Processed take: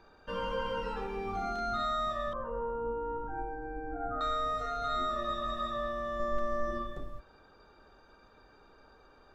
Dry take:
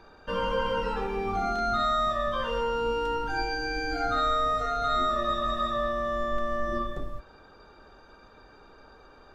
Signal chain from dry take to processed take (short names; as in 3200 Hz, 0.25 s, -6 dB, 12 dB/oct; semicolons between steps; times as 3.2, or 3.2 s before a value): 2.33–4.21 LPF 1200 Hz 24 dB/oct; 6.19–6.71 comb 5.3 ms, depth 69%; gain -6.5 dB